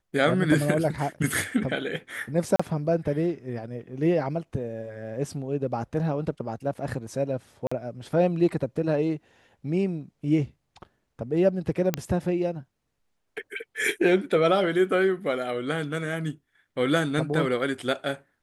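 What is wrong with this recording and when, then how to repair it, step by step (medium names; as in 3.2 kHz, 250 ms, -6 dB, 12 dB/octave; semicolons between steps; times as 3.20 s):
2.56–2.60 s: dropout 35 ms
7.67–7.71 s: dropout 45 ms
11.94 s: pop -9 dBFS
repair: de-click; interpolate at 2.56 s, 35 ms; interpolate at 7.67 s, 45 ms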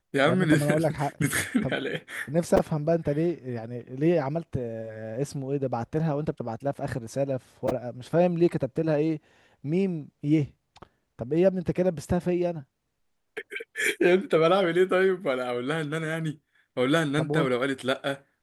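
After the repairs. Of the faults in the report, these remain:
11.94 s: pop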